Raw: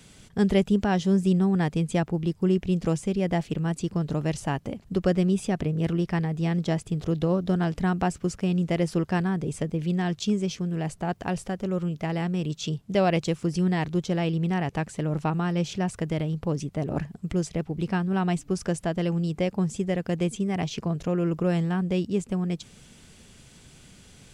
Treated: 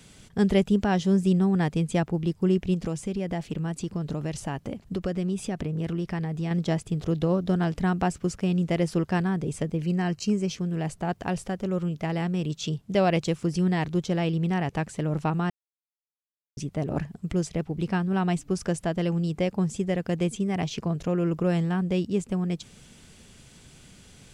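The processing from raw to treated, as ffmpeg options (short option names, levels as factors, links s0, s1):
-filter_complex "[0:a]asettb=1/sr,asplit=3[s0][s1][s2];[s0]atrim=end=2.744[s3];[s1]atrim=start=2.74:end=6.51,asetpts=PTS-STARTPTS,afade=t=in:d=0.004:c=qsin,afade=t=out:st=3.766:d=0.004:c=qsin,acompressor=threshold=0.0501:ratio=2.5:attack=3.2:release=140:knee=1:detection=peak[s4];[s2]atrim=start=6.506[s5];[s3][s4]acrossfade=d=0.004:c1=hsin:c2=qsin[s6];[s6][s5]acrossfade=d=0.004:c1=qsin:c2=hsin,asettb=1/sr,asplit=3[s7][s8][s9];[s7]atrim=end=9.824[s10];[s8]atrim=start=9.82:end=10.5,asetpts=PTS-STARTPTS,afade=t=in:d=0.004:c=qsin,afade=t=out:st=0.676:d=0.004:c=qsin,asuperstop=centerf=3500:order=8:qfactor=5.3[s11];[s9]atrim=start=10.496[s12];[s10][s11]acrossfade=d=0.004:c1=hsin:c2=qsin[s13];[s13][s12]acrossfade=d=0.004:c1=qsin:c2=hsin,asplit=3[s14][s15][s16];[s14]atrim=end=15.5,asetpts=PTS-STARTPTS,afade=t=out:st=15.496:d=0.004:c=hsin[s17];[s15]atrim=start=15.5:end=16.57,asetpts=PTS-STARTPTS,volume=0[s18];[s16]atrim=start=16.57,asetpts=PTS-STARTPTS,afade=t=in:d=0.004:c=hsin[s19];[s17][s18][s19]concat=n=3:v=0:a=1"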